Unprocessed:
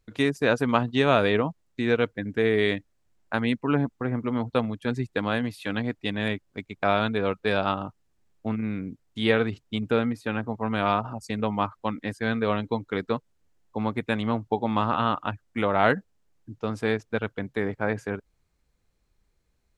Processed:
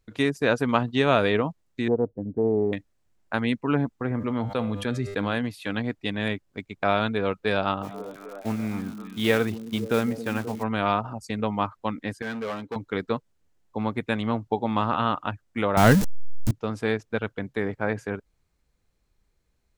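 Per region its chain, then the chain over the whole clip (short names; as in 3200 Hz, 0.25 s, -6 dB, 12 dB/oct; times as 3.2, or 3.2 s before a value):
1.88–2.73 inverse Chebyshev low-pass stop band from 2400 Hz, stop band 60 dB + Doppler distortion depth 0.17 ms
4.1–5.37 resonator 100 Hz, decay 0.54 s, mix 50% + fast leveller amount 70%
7.82–10.62 block floating point 5-bit + delay with a stepping band-pass 0.265 s, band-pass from 210 Hz, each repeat 0.7 oct, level -8 dB + crackle 120/s -35 dBFS
12.22–12.76 high shelf 4200 Hz -7.5 dB + hard clip -25.5 dBFS + HPF 260 Hz 6 dB/oct
15.77–16.51 zero-crossing step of -27 dBFS + tone controls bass +14 dB, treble +10 dB
whole clip: dry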